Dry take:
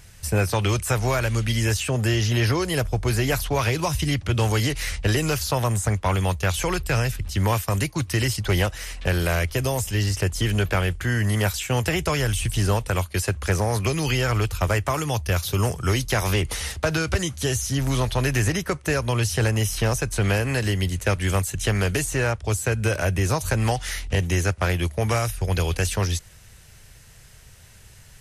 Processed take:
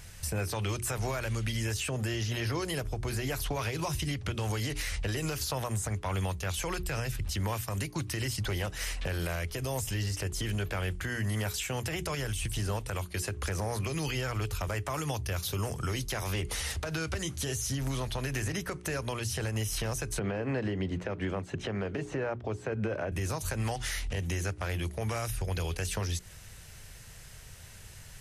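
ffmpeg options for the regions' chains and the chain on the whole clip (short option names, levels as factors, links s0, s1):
-filter_complex "[0:a]asettb=1/sr,asplit=3[s0][s1][s2];[s0]atrim=end=20.194[s3];[s1]atrim=start=20.19:end=23.12,asetpts=PTS-STARTPTS,afade=t=in:d=0.004:c=qsin,afade=t=out:st=2.926:d=0.004:c=qsin,highpass=180,lowpass=3800,tiltshelf=f=1500:g=7.5[s4];[s2]atrim=start=23.116[s5];[s3][s4]acrossfade=d=0.004:c1=hsin:c2=qsin[s6];[s6][s5]acrossfade=d=0.004:c1=qsin:c2=hsin,acompressor=threshold=0.0501:ratio=3,bandreject=f=60:t=h:w=6,bandreject=f=120:t=h:w=6,bandreject=f=180:t=h:w=6,bandreject=f=240:t=h:w=6,bandreject=f=300:t=h:w=6,bandreject=f=360:t=h:w=6,bandreject=f=420:t=h:w=6,alimiter=limit=0.0631:level=0:latency=1:release=153"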